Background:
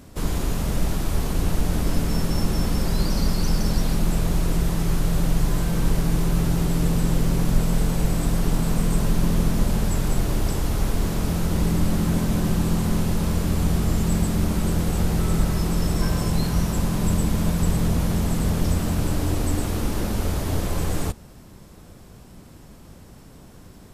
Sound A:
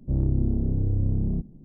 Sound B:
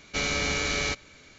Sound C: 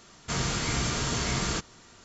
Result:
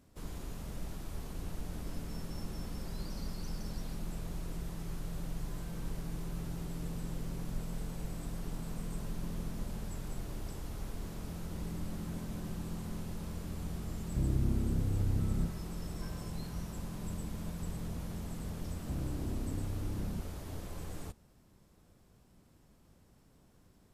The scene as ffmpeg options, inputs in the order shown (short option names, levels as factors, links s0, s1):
-filter_complex "[1:a]asplit=2[s0][s1];[0:a]volume=0.119[s2];[s1]asoftclip=type=hard:threshold=0.075[s3];[s0]atrim=end=1.64,asetpts=PTS-STARTPTS,volume=0.398,afade=t=in:d=0.004:c=hsin,afade=t=out:st=1.636:d=0.004:c=hsin,adelay=14070[s4];[s3]atrim=end=1.64,asetpts=PTS-STARTPTS,volume=0.251,afade=t=in:d=0.004:c=hsin,afade=t=out:st=1.636:d=0.004:c=hsin,adelay=18800[s5];[s2][s4][s5]amix=inputs=3:normalize=0"